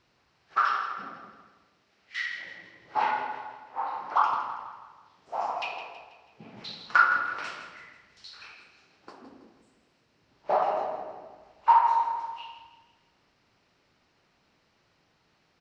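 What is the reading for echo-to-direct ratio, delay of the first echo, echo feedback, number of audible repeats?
-10.0 dB, 0.163 s, 46%, 4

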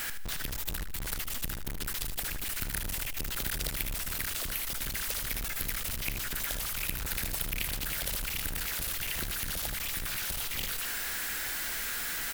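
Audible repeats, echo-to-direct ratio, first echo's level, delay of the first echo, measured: 3, -8.0 dB, -8.5 dB, 77 ms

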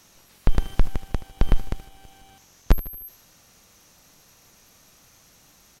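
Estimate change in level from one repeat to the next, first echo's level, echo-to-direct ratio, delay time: -6.5 dB, -17.0 dB, -16.0 dB, 76 ms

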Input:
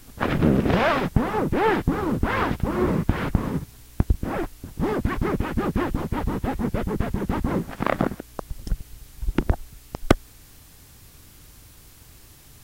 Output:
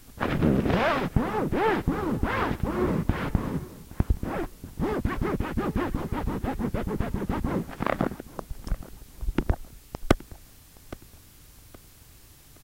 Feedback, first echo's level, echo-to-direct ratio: 33%, -20.0 dB, -19.5 dB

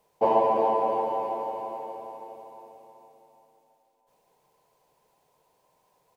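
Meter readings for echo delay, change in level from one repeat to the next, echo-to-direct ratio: 0.328 s, -4.5 dB, -8.5 dB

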